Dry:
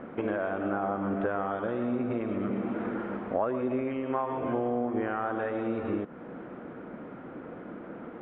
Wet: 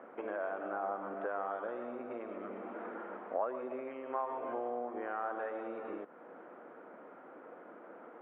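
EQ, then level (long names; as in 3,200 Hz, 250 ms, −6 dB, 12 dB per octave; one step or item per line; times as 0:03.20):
high-pass filter 600 Hz 12 dB per octave
low-pass filter 1,100 Hz 6 dB per octave
high-frequency loss of the air 88 metres
−1.5 dB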